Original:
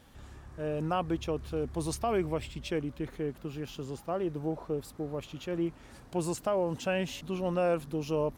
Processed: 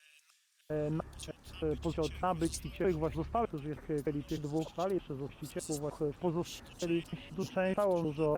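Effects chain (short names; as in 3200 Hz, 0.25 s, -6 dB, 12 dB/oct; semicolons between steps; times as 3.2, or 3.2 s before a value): slices in reverse order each 0.306 s, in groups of 3; bands offset in time highs, lows 0.7 s, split 2600 Hz; gain -1.5 dB; Opus 64 kbps 48000 Hz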